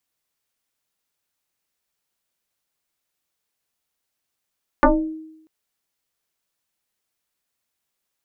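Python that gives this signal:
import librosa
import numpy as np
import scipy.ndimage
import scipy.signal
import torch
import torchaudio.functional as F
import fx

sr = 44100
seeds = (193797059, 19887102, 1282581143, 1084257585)

y = fx.fm2(sr, length_s=0.64, level_db=-8.0, carrier_hz=316.0, ratio=0.92, index=4.8, index_s=0.41, decay_s=0.85, shape='exponential')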